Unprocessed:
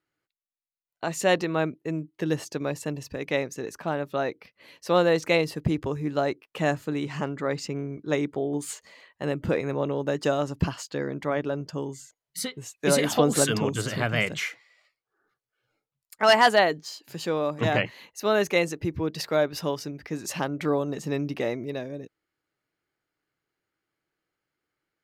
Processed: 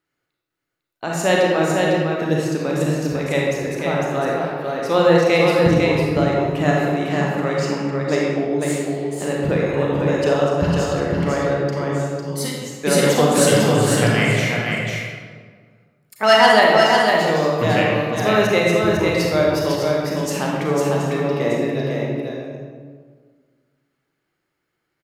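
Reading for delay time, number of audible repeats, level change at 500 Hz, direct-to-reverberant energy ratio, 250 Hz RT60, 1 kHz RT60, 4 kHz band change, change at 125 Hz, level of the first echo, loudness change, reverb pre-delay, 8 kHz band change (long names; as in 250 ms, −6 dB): 502 ms, 1, +9.0 dB, −5.0 dB, 2.0 s, 1.6 s, +8.0 dB, +10.5 dB, −4.0 dB, +8.5 dB, 32 ms, +6.5 dB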